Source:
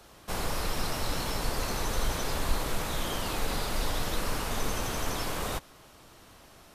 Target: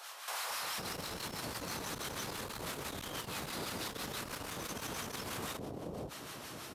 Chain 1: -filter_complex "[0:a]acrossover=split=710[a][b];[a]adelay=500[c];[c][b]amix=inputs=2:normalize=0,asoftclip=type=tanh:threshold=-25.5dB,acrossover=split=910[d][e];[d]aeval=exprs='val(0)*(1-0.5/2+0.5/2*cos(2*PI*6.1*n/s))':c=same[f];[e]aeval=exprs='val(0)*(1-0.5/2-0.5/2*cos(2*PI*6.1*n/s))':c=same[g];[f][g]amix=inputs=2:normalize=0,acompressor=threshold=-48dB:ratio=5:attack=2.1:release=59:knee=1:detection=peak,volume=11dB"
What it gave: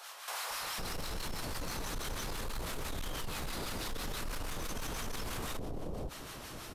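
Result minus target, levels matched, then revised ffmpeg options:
125 Hz band +3.5 dB
-filter_complex "[0:a]acrossover=split=710[a][b];[a]adelay=500[c];[c][b]amix=inputs=2:normalize=0,asoftclip=type=tanh:threshold=-25.5dB,acrossover=split=910[d][e];[d]aeval=exprs='val(0)*(1-0.5/2+0.5/2*cos(2*PI*6.1*n/s))':c=same[f];[e]aeval=exprs='val(0)*(1-0.5/2-0.5/2*cos(2*PI*6.1*n/s))':c=same[g];[f][g]amix=inputs=2:normalize=0,acompressor=threshold=-48dB:ratio=5:attack=2.1:release=59:knee=1:detection=peak,highpass=110,volume=11dB"

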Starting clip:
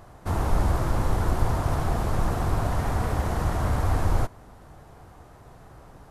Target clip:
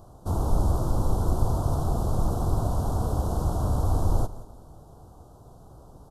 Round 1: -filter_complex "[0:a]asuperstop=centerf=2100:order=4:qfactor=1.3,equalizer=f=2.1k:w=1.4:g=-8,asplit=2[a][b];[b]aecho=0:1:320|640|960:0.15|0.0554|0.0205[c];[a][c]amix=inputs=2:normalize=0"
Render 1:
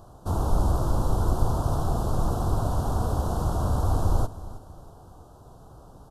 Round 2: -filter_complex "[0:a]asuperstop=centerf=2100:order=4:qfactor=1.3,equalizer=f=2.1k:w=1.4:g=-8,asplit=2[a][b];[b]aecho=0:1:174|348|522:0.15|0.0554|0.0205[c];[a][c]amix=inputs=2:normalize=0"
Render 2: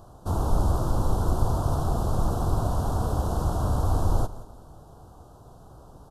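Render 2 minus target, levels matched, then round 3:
2000 Hz band +5.0 dB
-filter_complex "[0:a]asuperstop=centerf=2100:order=4:qfactor=1.3,equalizer=f=2.1k:w=1.4:g=-18.5,asplit=2[a][b];[b]aecho=0:1:174|348|522:0.15|0.0554|0.0205[c];[a][c]amix=inputs=2:normalize=0"

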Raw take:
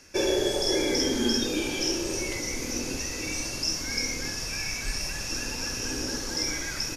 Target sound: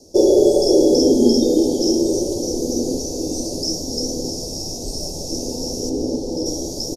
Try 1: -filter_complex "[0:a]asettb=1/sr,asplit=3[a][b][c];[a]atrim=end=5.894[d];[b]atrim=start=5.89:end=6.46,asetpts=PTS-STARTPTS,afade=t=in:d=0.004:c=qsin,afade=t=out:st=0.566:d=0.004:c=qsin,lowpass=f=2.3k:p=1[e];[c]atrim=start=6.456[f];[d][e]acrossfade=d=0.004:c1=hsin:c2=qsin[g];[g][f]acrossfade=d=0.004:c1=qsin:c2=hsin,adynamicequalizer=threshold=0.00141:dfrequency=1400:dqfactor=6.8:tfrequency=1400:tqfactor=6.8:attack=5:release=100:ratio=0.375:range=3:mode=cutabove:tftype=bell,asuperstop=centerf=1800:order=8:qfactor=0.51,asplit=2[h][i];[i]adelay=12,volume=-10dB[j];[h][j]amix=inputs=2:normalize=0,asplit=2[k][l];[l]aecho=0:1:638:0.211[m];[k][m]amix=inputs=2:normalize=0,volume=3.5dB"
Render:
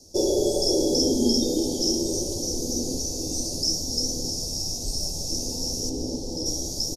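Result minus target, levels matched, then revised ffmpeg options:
500 Hz band -4.0 dB
-filter_complex "[0:a]asettb=1/sr,asplit=3[a][b][c];[a]atrim=end=5.894[d];[b]atrim=start=5.89:end=6.46,asetpts=PTS-STARTPTS,afade=t=in:d=0.004:c=qsin,afade=t=out:st=0.566:d=0.004:c=qsin,lowpass=f=2.3k:p=1[e];[c]atrim=start=6.456[f];[d][e]acrossfade=d=0.004:c1=hsin:c2=qsin[g];[g][f]acrossfade=d=0.004:c1=qsin:c2=hsin,adynamicequalizer=threshold=0.00141:dfrequency=1400:dqfactor=6.8:tfrequency=1400:tqfactor=6.8:attack=5:release=100:ratio=0.375:range=3:mode=cutabove:tftype=bell,asuperstop=centerf=1800:order=8:qfactor=0.51,equalizer=f=430:t=o:w=2.4:g=10.5,asplit=2[h][i];[i]adelay=12,volume=-10dB[j];[h][j]amix=inputs=2:normalize=0,asplit=2[k][l];[l]aecho=0:1:638:0.211[m];[k][m]amix=inputs=2:normalize=0,volume=3.5dB"

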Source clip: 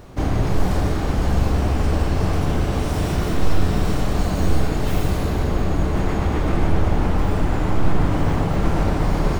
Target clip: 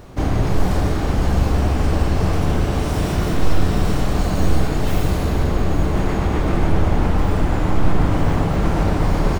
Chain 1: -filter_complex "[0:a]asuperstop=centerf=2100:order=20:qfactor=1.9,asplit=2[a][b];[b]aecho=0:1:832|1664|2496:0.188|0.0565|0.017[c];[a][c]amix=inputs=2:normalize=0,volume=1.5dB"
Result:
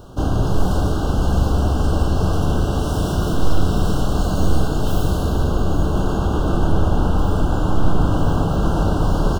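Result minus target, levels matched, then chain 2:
2000 Hz band -4.0 dB
-filter_complex "[0:a]asplit=2[a][b];[b]aecho=0:1:832|1664|2496:0.188|0.0565|0.017[c];[a][c]amix=inputs=2:normalize=0,volume=1.5dB"

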